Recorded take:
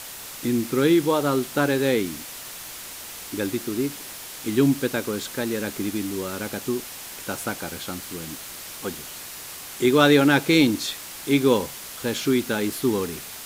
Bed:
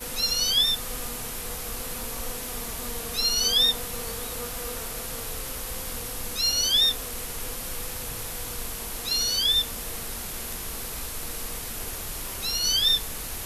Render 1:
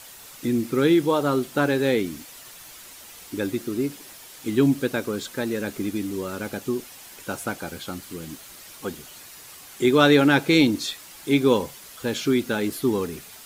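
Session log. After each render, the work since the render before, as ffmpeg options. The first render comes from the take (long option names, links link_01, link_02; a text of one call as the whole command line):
ffmpeg -i in.wav -af "afftdn=noise_reduction=8:noise_floor=-38" out.wav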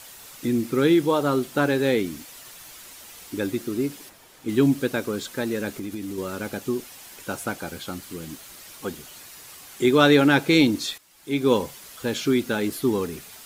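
ffmpeg -i in.wav -filter_complex "[0:a]asplit=3[link_01][link_02][link_03];[link_01]afade=type=out:start_time=4.08:duration=0.02[link_04];[link_02]highshelf=frequency=2100:gain=-10,afade=type=in:start_time=4.08:duration=0.02,afade=type=out:start_time=4.48:duration=0.02[link_05];[link_03]afade=type=in:start_time=4.48:duration=0.02[link_06];[link_04][link_05][link_06]amix=inputs=3:normalize=0,asettb=1/sr,asplit=3[link_07][link_08][link_09];[link_07]atrim=end=5.714[link_10];[link_08]atrim=start=5.71:end=6.18,asetpts=PTS-STARTPTS,afade=type=in:duration=0.004:curve=qsin,afade=type=out:start_time=0.466:duration=0.004:curve=qsin,acompressor=threshold=-28dB:ratio=6:attack=3.2:release=140:knee=1:detection=peak[link_11];[link_09]atrim=start=6.176[link_12];[link_10][link_11]acrossfade=duration=0.004:curve1=hsin:curve2=qsin[link_13];[link_13][link_12]acrossfade=duration=0.004:curve1=qsin:curve2=hsin,asplit=2[link_14][link_15];[link_14]atrim=end=10.98,asetpts=PTS-STARTPTS,afade=type=out:start_time=10.976:duration=0.004:curve=hsin:silence=0.188365[link_16];[link_15]atrim=start=10.98,asetpts=PTS-STARTPTS,afade=type=in:duration=0.55:curve=qua:silence=0.188365[link_17];[link_16][link_17]concat=n=2:v=0:a=1" out.wav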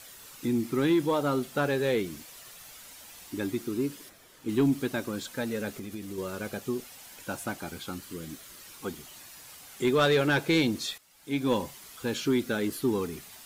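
ffmpeg -i in.wav -af "flanger=delay=0.5:depth=1.4:regen=-68:speed=0.24:shape=triangular,asoftclip=type=tanh:threshold=-15.5dB" out.wav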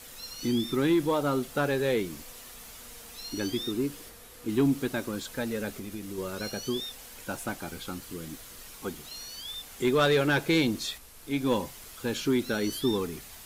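ffmpeg -i in.wav -i bed.wav -filter_complex "[1:a]volume=-17.5dB[link_01];[0:a][link_01]amix=inputs=2:normalize=0" out.wav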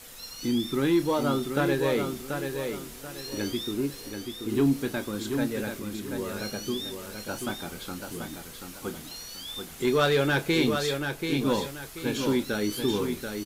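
ffmpeg -i in.wav -filter_complex "[0:a]asplit=2[link_01][link_02];[link_02]adelay=29,volume=-11.5dB[link_03];[link_01][link_03]amix=inputs=2:normalize=0,aecho=1:1:734|1468|2202|2936:0.501|0.165|0.0546|0.018" out.wav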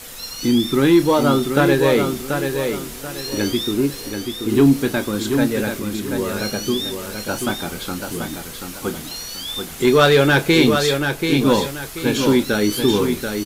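ffmpeg -i in.wav -af "volume=10dB" out.wav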